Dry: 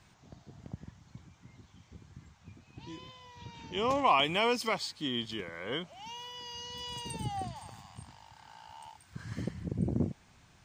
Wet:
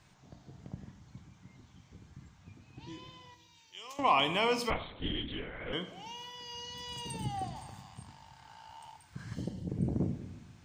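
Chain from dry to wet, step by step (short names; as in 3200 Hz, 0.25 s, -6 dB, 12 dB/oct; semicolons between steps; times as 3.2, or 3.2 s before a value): 3.34–3.99 differentiator; 9.34–9.69 spectral gain 950–2700 Hz -12 dB; shoebox room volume 320 m³, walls mixed, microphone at 0.44 m; 4.7–5.73 LPC vocoder at 8 kHz whisper; gain -1.5 dB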